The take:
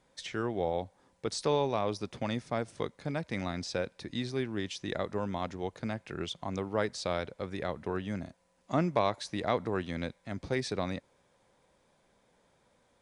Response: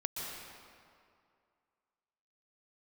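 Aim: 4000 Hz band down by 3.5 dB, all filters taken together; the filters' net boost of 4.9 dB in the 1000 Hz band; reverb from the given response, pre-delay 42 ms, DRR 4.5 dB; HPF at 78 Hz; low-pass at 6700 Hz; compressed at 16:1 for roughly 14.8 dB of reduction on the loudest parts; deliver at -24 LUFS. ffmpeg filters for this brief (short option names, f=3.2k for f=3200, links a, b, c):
-filter_complex "[0:a]highpass=78,lowpass=6.7k,equalizer=f=1k:t=o:g=6.5,equalizer=f=4k:t=o:g=-4,acompressor=threshold=-33dB:ratio=16,asplit=2[a][b];[1:a]atrim=start_sample=2205,adelay=42[c];[b][c]afir=irnorm=-1:irlink=0,volume=-7dB[d];[a][d]amix=inputs=2:normalize=0,volume=15dB"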